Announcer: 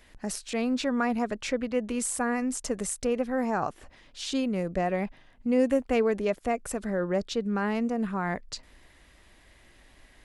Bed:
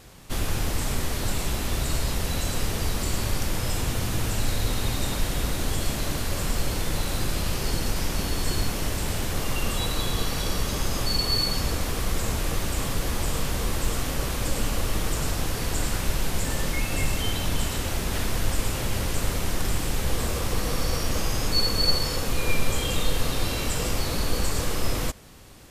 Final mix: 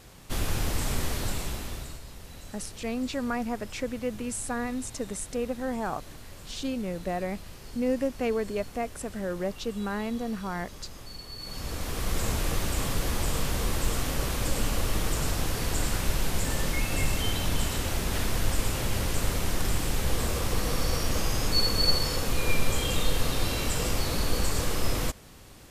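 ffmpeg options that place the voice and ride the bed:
ffmpeg -i stem1.wav -i stem2.wav -filter_complex "[0:a]adelay=2300,volume=-3.5dB[link_01];[1:a]volume=14.5dB,afade=type=out:start_time=1.09:duration=0.91:silence=0.158489,afade=type=in:start_time=11.38:duration=0.85:silence=0.149624[link_02];[link_01][link_02]amix=inputs=2:normalize=0" out.wav

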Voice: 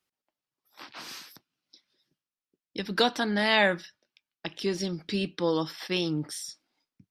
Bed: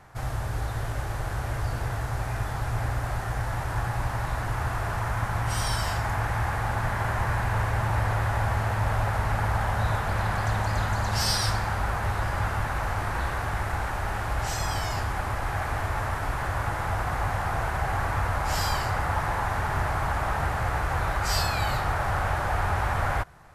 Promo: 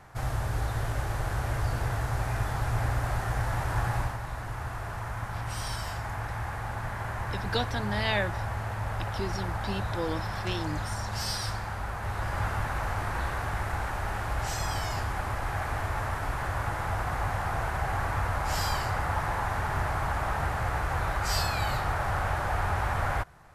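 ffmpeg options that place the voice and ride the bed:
ffmpeg -i stem1.wav -i stem2.wav -filter_complex "[0:a]adelay=4550,volume=-6dB[link_01];[1:a]volume=4.5dB,afade=type=out:start_time=3.97:duration=0.21:silence=0.446684,afade=type=in:start_time=11.97:duration=0.45:silence=0.595662[link_02];[link_01][link_02]amix=inputs=2:normalize=0" out.wav

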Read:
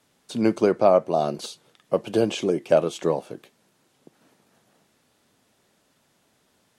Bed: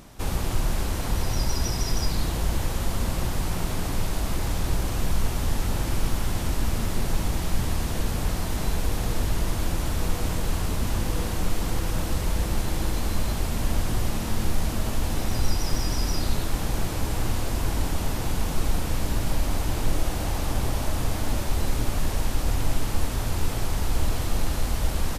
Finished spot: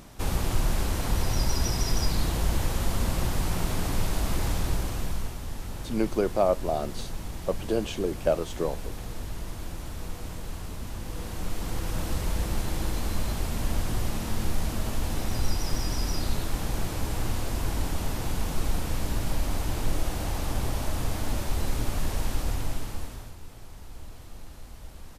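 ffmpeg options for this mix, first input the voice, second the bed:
ffmpeg -i stem1.wav -i stem2.wav -filter_complex "[0:a]adelay=5550,volume=-6dB[link_01];[1:a]volume=7dB,afade=type=out:start_time=4.47:duration=0.92:silence=0.316228,afade=type=in:start_time=11:duration=1.1:silence=0.421697,afade=type=out:start_time=22.34:duration=1.02:silence=0.158489[link_02];[link_01][link_02]amix=inputs=2:normalize=0" out.wav

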